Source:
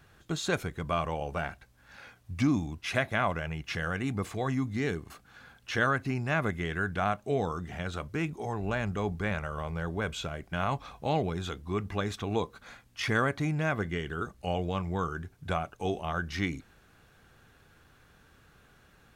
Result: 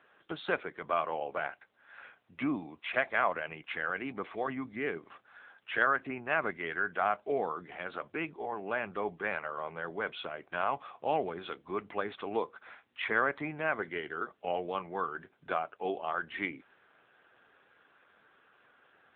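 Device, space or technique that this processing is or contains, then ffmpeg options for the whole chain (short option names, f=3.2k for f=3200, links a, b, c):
telephone: -af "highpass=390,lowpass=3.5k,volume=1dB" -ar 8000 -c:a libopencore_amrnb -b:a 7950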